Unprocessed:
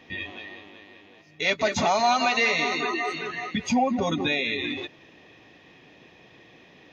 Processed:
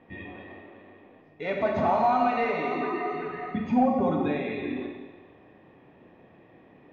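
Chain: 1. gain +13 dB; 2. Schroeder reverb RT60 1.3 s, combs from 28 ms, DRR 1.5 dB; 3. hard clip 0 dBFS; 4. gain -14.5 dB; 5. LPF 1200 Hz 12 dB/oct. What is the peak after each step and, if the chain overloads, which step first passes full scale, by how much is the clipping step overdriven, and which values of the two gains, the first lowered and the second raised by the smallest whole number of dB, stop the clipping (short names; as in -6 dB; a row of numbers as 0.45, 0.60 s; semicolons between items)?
+2.0, +5.0, 0.0, -14.5, -14.0 dBFS; step 1, 5.0 dB; step 1 +8 dB, step 4 -9.5 dB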